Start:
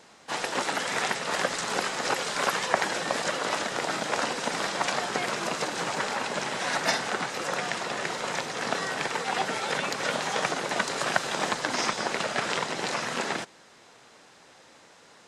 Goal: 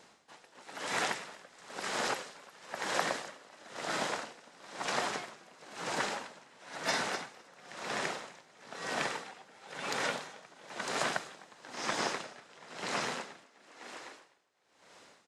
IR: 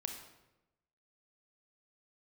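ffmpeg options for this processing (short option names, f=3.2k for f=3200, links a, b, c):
-filter_complex "[0:a]asplit=9[a][b][c][d][e][f][g][h][i];[b]adelay=253,afreqshift=36,volume=-5.5dB[j];[c]adelay=506,afreqshift=72,volume=-9.9dB[k];[d]adelay=759,afreqshift=108,volume=-14.4dB[l];[e]adelay=1012,afreqshift=144,volume=-18.8dB[m];[f]adelay=1265,afreqshift=180,volume=-23.2dB[n];[g]adelay=1518,afreqshift=216,volume=-27.7dB[o];[h]adelay=1771,afreqshift=252,volume=-32.1dB[p];[i]adelay=2024,afreqshift=288,volume=-36.6dB[q];[a][j][k][l][m][n][o][p][q]amix=inputs=9:normalize=0,aeval=exprs='val(0)*pow(10,-25*(0.5-0.5*cos(2*PI*1*n/s))/20)':c=same,volume=-4.5dB"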